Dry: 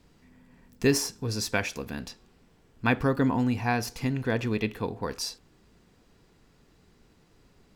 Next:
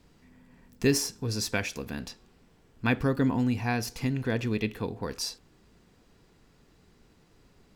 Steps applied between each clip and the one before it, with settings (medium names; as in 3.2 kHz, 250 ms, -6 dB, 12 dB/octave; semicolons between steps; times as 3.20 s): dynamic bell 940 Hz, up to -5 dB, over -39 dBFS, Q 0.78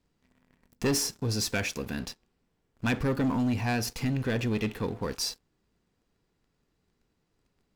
waveshaping leveller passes 3; trim -8.5 dB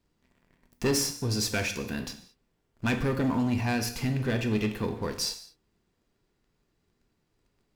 gated-style reverb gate 240 ms falling, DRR 6 dB